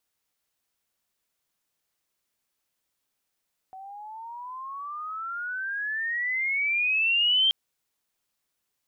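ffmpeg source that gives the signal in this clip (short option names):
-f lavfi -i "aevalsrc='pow(10,(-18+21.5*(t/3.78-1))/20)*sin(2*PI*751*3.78/(25*log(2)/12)*(exp(25*log(2)/12*t/3.78)-1))':d=3.78:s=44100"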